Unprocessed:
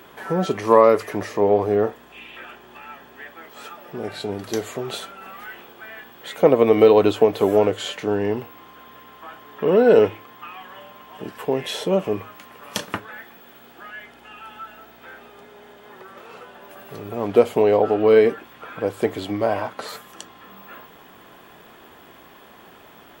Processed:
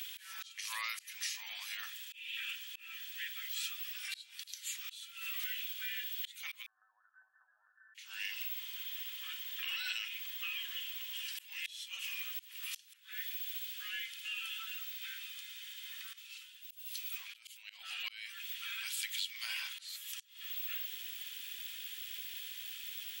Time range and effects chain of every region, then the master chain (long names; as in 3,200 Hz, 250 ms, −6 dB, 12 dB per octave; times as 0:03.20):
0:06.66–0:07.95: downward compressor 8 to 1, threshold −20 dBFS + linear-phase brick-wall low-pass 1,800 Hz + tuned comb filter 760 Hz, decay 0.31 s, mix 80%
0:16.13–0:17.70: mains-hum notches 50/100/150/200/250/300/350/400 Hz + downward compressor 12 to 1, threshold −24 dBFS + multiband upward and downward expander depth 100%
whole clip: inverse Chebyshev high-pass filter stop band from 460 Hz, stop band 80 dB; downward compressor 8 to 1, threshold −45 dBFS; volume swells 275 ms; level +10 dB